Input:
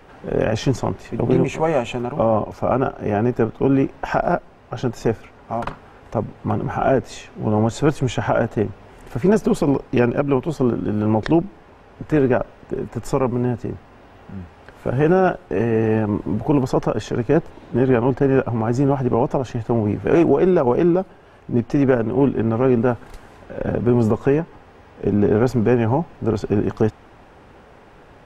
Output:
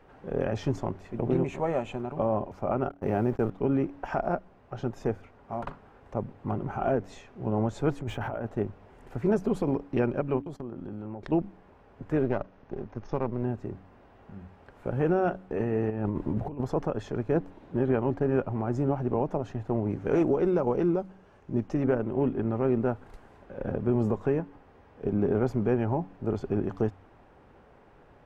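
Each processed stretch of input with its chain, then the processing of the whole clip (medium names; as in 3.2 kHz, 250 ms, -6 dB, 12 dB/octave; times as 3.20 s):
2.89–3.50 s: companding laws mixed up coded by A + gate -32 dBFS, range -49 dB + level flattener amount 50%
8.01–8.46 s: treble shelf 6.3 kHz -4.5 dB + compressor with a negative ratio -23 dBFS + decimation joined by straight lines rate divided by 3×
10.39–11.32 s: gate -32 dBFS, range -19 dB + compression 8:1, threshold -24 dBFS
12.23–13.43 s: partial rectifier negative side -7 dB + brick-wall FIR low-pass 6.7 kHz
15.90–16.61 s: bass shelf 120 Hz +4.5 dB + compressor with a negative ratio -20 dBFS, ratio -0.5
19.90–21.74 s: peaking EQ 6.4 kHz +7 dB + band-stop 700 Hz, Q 18
whole clip: treble shelf 2.5 kHz -8.5 dB; de-hum 94.2 Hz, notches 3; trim -9 dB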